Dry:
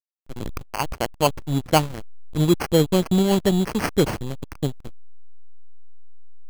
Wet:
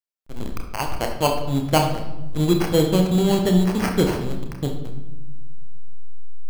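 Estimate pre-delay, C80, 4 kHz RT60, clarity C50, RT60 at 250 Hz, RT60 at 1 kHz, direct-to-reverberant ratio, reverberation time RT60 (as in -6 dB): 29 ms, 9.0 dB, 0.80 s, 6.5 dB, 1.9 s, 1.0 s, 3.0 dB, 1.1 s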